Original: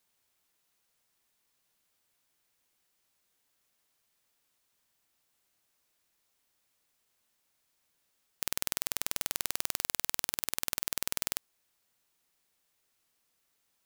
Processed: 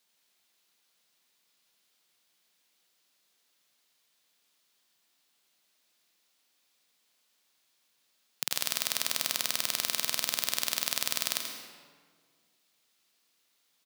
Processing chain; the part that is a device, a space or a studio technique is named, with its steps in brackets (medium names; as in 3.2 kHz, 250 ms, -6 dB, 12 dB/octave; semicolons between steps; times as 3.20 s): PA in a hall (high-pass 150 Hz 24 dB/octave; peaking EQ 3.9 kHz +7 dB 1.4 oct; delay 84 ms -9.5 dB; reverberation RT60 1.7 s, pre-delay 82 ms, DRR 4.5 dB)